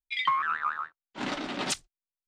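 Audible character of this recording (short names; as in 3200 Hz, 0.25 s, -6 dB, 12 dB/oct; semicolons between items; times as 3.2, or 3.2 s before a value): noise floor -95 dBFS; spectral tilt -2.0 dB/oct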